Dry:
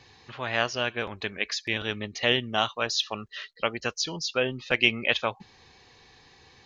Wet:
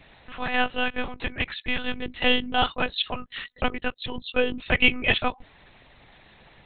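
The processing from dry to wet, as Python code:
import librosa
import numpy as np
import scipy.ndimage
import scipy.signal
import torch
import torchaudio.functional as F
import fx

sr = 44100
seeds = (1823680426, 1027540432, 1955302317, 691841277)

y = fx.lpc_monotone(x, sr, seeds[0], pitch_hz=250.0, order=8)
y = y * librosa.db_to_amplitude(3.5)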